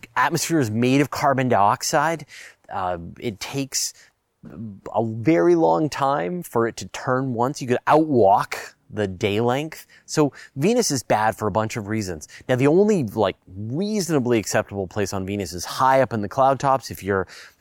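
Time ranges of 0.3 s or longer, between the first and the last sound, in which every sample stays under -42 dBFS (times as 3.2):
4.04–4.44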